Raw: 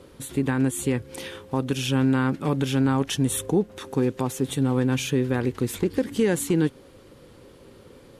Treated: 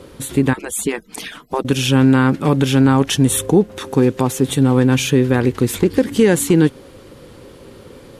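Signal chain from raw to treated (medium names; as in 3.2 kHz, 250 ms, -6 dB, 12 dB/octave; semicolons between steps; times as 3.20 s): 0.53–1.65 s: harmonic-percussive separation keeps percussive; trim +9 dB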